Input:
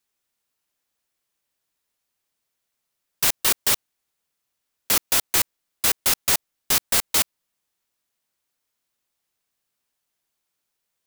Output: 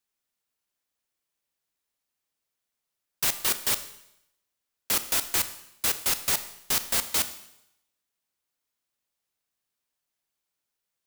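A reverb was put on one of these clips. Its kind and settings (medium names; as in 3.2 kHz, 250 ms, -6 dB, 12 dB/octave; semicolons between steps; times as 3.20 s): Schroeder reverb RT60 0.8 s, combs from 26 ms, DRR 11 dB; trim -5.5 dB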